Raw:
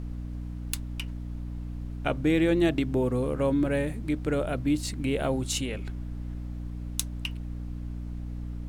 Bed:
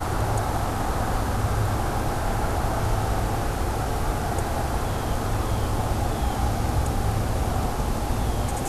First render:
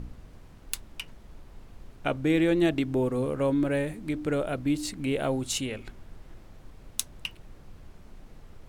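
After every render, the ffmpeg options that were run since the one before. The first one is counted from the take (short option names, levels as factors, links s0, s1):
-af "bandreject=f=60:t=h:w=4,bandreject=f=120:t=h:w=4,bandreject=f=180:t=h:w=4,bandreject=f=240:t=h:w=4,bandreject=f=300:t=h:w=4"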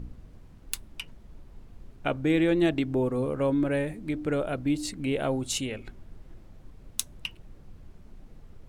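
-af "afftdn=nr=6:nf=-51"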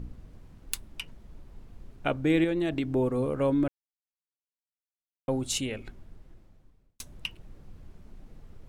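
-filter_complex "[0:a]asettb=1/sr,asplit=3[s0][s1][s2];[s0]atrim=end=2.444[s3];[s1]atrim=start=2.44:end=2.9,asetpts=PTS-STARTPTS,afade=t=in:d=0.004:c=qsin,afade=t=out:st=0.456:d=0.004:c=qsin,acompressor=threshold=0.0631:ratio=6:attack=3.2:release=140:knee=1:detection=peak[s4];[s2]atrim=start=2.896[s5];[s3][s4]acrossfade=d=0.004:c1=hsin:c2=qsin[s6];[s6][s5]acrossfade=d=0.004:c1=qsin:c2=hsin,asplit=4[s7][s8][s9][s10];[s7]atrim=end=3.68,asetpts=PTS-STARTPTS,afade=t=out:st=3.676:d=0.004:c=hsin[s11];[s8]atrim=start=3.68:end=5.28,asetpts=PTS-STARTPTS,volume=0[s12];[s9]atrim=start=5.28:end=7,asetpts=PTS-STARTPTS,afade=t=in:d=0.004:c=hsin,afade=t=out:st=0.5:d=1.22[s13];[s10]atrim=start=7,asetpts=PTS-STARTPTS,afade=t=in:d=0.004:c=hsin[s14];[s11][s12][s13][s14]concat=n=4:v=0:a=1"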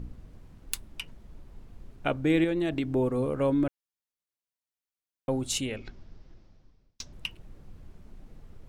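-filter_complex "[0:a]asettb=1/sr,asplit=3[s0][s1][s2];[s0]atrim=end=5.764[s3];[s1]atrim=start=5.76:end=7.13,asetpts=PTS-STARTPTS,afade=t=in:d=0.004:c=qsin,afade=t=out:st=1.366:d=0.004:c=qsin,highshelf=f=7400:t=q:w=3:g=-12.5[s4];[s2]atrim=start=7.126[s5];[s3][s4]acrossfade=d=0.004:c1=hsin:c2=qsin[s6];[s6][s5]acrossfade=d=0.004:c1=qsin:c2=hsin"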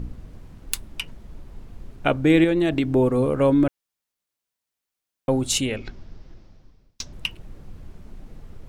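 -af "volume=2.37,alimiter=limit=0.794:level=0:latency=1"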